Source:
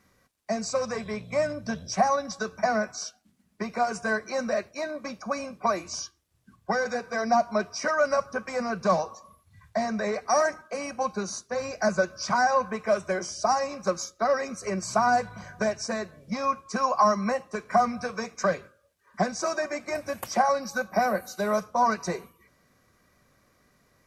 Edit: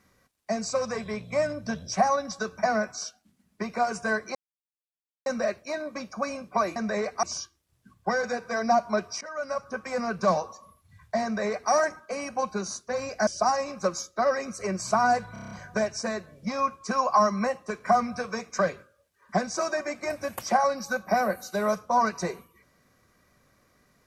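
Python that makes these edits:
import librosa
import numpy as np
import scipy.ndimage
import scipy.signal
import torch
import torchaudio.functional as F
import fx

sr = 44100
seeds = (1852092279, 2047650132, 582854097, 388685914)

y = fx.edit(x, sr, fx.insert_silence(at_s=4.35, length_s=0.91),
    fx.fade_in_from(start_s=7.83, length_s=0.76, floor_db=-18.5),
    fx.duplicate(start_s=9.86, length_s=0.47, to_s=5.85),
    fx.cut(start_s=11.89, length_s=1.41),
    fx.stutter(start_s=15.36, slice_s=0.03, count=7), tone=tone)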